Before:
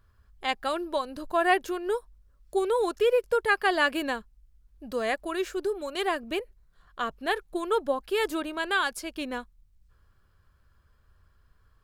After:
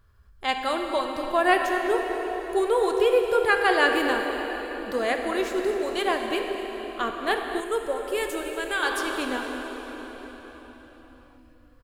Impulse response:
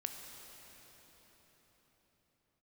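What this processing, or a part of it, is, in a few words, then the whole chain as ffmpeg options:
cave: -filter_complex "[0:a]aecho=1:1:236:0.188[link_01];[1:a]atrim=start_sample=2205[link_02];[link_01][link_02]afir=irnorm=-1:irlink=0,asettb=1/sr,asplit=3[link_03][link_04][link_05];[link_03]atrim=end=7.604[link_06];[link_04]atrim=start=7.6:end=8.83,asetpts=PTS-STARTPTS,afade=type=in:duration=0.004:curve=qsin,afade=type=out:start_time=1.226:duration=0.004:curve=qsin,equalizer=frequency=250:width_type=o:width=1:gain=-9,equalizer=frequency=1000:width_type=o:width=1:gain=-8,equalizer=frequency=4000:width_type=o:width=1:gain=-7,equalizer=frequency=8000:width_type=o:width=1:gain=5[link_07];[link_05]atrim=start=8.826[link_08];[link_06][link_07]acrossfade=duration=0.004:curve1=hsin:curve2=qsin[link_09];[link_09][link_08]acrossfade=duration=0.004:curve1=qsin:curve2=hsin,volume=4.5dB"

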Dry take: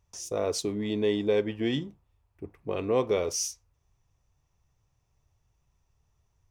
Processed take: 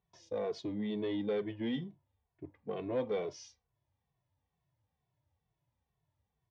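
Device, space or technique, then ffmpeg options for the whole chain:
barber-pole flanger into a guitar amplifier: -filter_complex "[0:a]asplit=2[link_01][link_02];[link_02]adelay=2.2,afreqshift=-2.2[link_03];[link_01][link_03]amix=inputs=2:normalize=1,asoftclip=type=tanh:threshold=-23dB,highpass=110,equalizer=frequency=390:width_type=q:width=4:gain=-5,equalizer=frequency=1300:width_type=q:width=4:gain=-9,equalizer=frequency=2600:width_type=q:width=4:gain=-8,lowpass=frequency=3700:width=0.5412,lowpass=frequency=3700:width=1.3066,volume=-1.5dB"

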